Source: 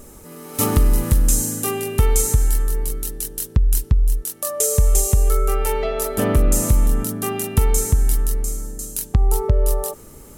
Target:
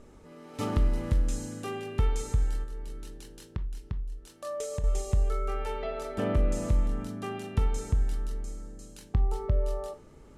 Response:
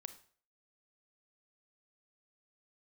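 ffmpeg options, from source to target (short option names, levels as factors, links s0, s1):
-filter_complex "[0:a]lowpass=3900,asettb=1/sr,asplit=3[s0][s1][s2];[s0]atrim=end=2.634[s3];[s1]atrim=start=2.63:end=4.84,asetpts=PTS-STARTPTS,afade=t=in:d=0.004:c=qsin,afade=t=out:st=2.206:d=0.004:c=qsin,acompressor=threshold=0.0891:ratio=6[s4];[s2]atrim=start=4.836[s5];[s3][s4]acrossfade=d=0.004:c1=hsin:c2=qsin[s6];[s6][s5]acrossfade=d=0.004:c1=qsin:c2=hsin[s7];[1:a]atrim=start_sample=2205,asetrate=74970,aresample=44100[s8];[s7][s8]afir=irnorm=-1:irlink=0"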